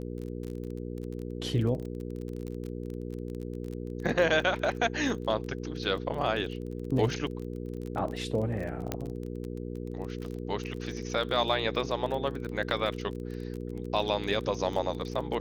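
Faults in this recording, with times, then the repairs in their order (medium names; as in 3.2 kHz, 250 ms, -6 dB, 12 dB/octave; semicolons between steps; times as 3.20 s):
crackle 26 per s -35 dBFS
hum 60 Hz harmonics 8 -37 dBFS
8.92 s: pop -15 dBFS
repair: de-click; de-hum 60 Hz, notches 8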